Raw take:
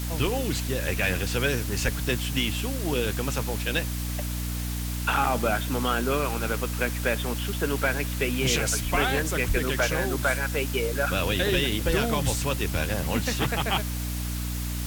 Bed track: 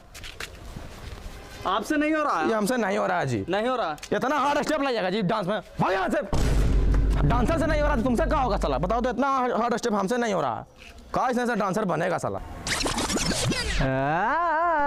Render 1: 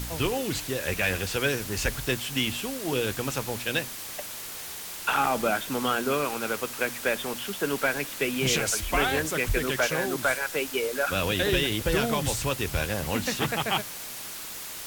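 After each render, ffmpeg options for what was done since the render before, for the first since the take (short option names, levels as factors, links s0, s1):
-af "bandreject=f=60:t=h:w=4,bandreject=f=120:t=h:w=4,bandreject=f=180:t=h:w=4,bandreject=f=240:t=h:w=4,bandreject=f=300:t=h:w=4"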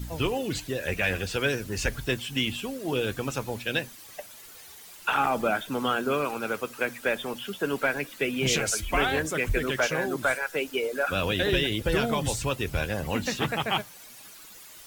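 -af "afftdn=nr=12:nf=-38"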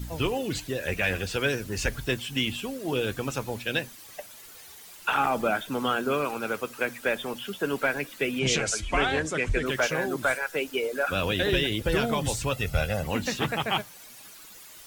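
-filter_complex "[0:a]asettb=1/sr,asplit=3[s0][s1][s2];[s0]atrim=end=8.394[s3];[s1]atrim=start=8.39:end=9.66,asetpts=PTS-STARTPTS,afade=t=in:d=0.004:c=qsin,afade=t=out:st=1.266:d=0.004:c=qsin,lowpass=f=8700:w=0.5412,lowpass=f=8700:w=1.3066[s4];[s2]atrim=start=9.656[s5];[s3][s4]acrossfade=d=0.004:c1=hsin:c2=qsin[s6];[s6][s5]acrossfade=d=0.004:c1=qsin:c2=hsin,asettb=1/sr,asplit=3[s7][s8][s9];[s7]atrim=end=12.524[s10];[s8]atrim=start=12.52:end=13.03,asetpts=PTS-STARTPTS,afade=t=in:d=0.004:c=qsin,afade=t=out:st=0.506:d=0.004:c=qsin,aecho=1:1:1.5:0.63,atrim=end_sample=22491[s11];[s9]atrim=start=13.026[s12];[s10][s11]acrossfade=d=0.004:c1=hsin:c2=qsin[s13];[s13][s12]acrossfade=d=0.004:c1=qsin:c2=hsin"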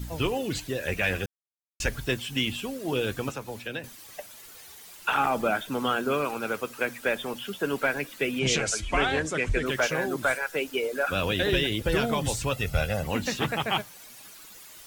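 -filter_complex "[0:a]asettb=1/sr,asplit=3[s0][s1][s2];[s0]atrim=end=3.294[s3];[s1]atrim=start=3.29:end=3.84,asetpts=PTS-STARTPTS,afade=t=in:d=0.004:c=qsin,afade=t=out:st=0.546:d=0.004:c=qsin,acrossover=split=120|300|2300[s4][s5][s6][s7];[s4]acompressor=threshold=0.00251:ratio=3[s8];[s5]acompressor=threshold=0.00562:ratio=3[s9];[s6]acompressor=threshold=0.0178:ratio=3[s10];[s7]acompressor=threshold=0.00501:ratio=3[s11];[s8][s9][s10][s11]amix=inputs=4:normalize=0[s12];[s2]atrim=start=3.836[s13];[s3][s12]acrossfade=d=0.004:c1=hsin:c2=qsin[s14];[s14][s13]acrossfade=d=0.004:c1=qsin:c2=hsin,asplit=3[s15][s16][s17];[s15]atrim=end=1.26,asetpts=PTS-STARTPTS,afade=t=out:st=1.256:d=0.004:c=hsin[s18];[s16]atrim=start=1.26:end=1.8,asetpts=PTS-STARTPTS,volume=0[s19];[s17]atrim=start=1.8,asetpts=PTS-STARTPTS,afade=t=in:d=0.004:c=hsin[s20];[s18][s19][s20]concat=n=3:v=0:a=1"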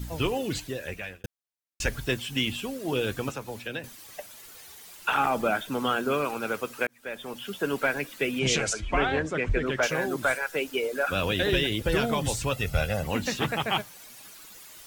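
-filter_complex "[0:a]asettb=1/sr,asplit=3[s0][s1][s2];[s0]atrim=end=8.734[s3];[s1]atrim=start=8.73:end=9.83,asetpts=PTS-STARTPTS,afade=t=in:d=0.004:c=qsin,afade=t=out:st=1.096:d=0.004:c=qsin,aemphasis=mode=reproduction:type=75fm[s4];[s2]atrim=start=9.826[s5];[s3][s4]acrossfade=d=0.004:c1=hsin:c2=qsin[s6];[s6][s5]acrossfade=d=0.004:c1=qsin:c2=hsin,asplit=3[s7][s8][s9];[s7]atrim=end=1.24,asetpts=PTS-STARTPTS,afade=t=out:st=0.53:d=0.71[s10];[s8]atrim=start=1.24:end=6.87,asetpts=PTS-STARTPTS,afade=t=in:d=0.004:c=hsin,afade=t=out:st=5.626:d=0.004:c=hsin[s11];[s9]atrim=start=6.87,asetpts=PTS-STARTPTS,afade=t=in:d=0.69[s12];[s10][s11][s12]concat=n=3:v=0:a=1"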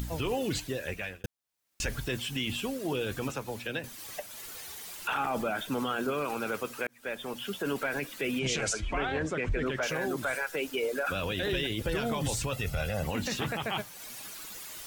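-af "alimiter=limit=0.075:level=0:latency=1:release=19,acompressor=mode=upward:threshold=0.0158:ratio=2.5"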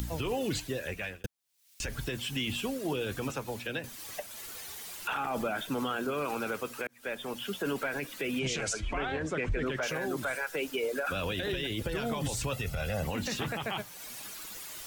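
-filter_complex "[0:a]acrossover=split=210|1700|2000[s0][s1][s2][s3];[s3]acompressor=mode=upward:threshold=0.00501:ratio=2.5[s4];[s0][s1][s2][s4]amix=inputs=4:normalize=0,alimiter=limit=0.0708:level=0:latency=1:release=168"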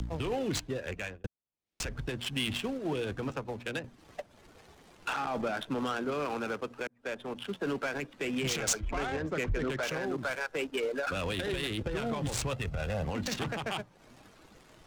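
-filter_complex "[0:a]acrossover=split=280|2100[s0][s1][s2];[s2]crystalizer=i=2.5:c=0[s3];[s0][s1][s3]amix=inputs=3:normalize=0,adynamicsmooth=sensitivity=5:basefreq=680"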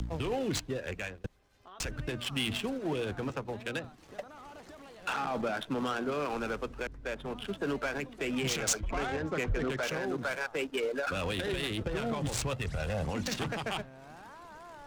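-filter_complex "[1:a]volume=0.0447[s0];[0:a][s0]amix=inputs=2:normalize=0"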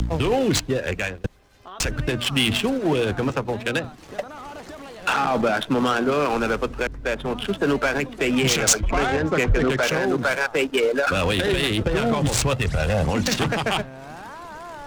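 -af "volume=3.98"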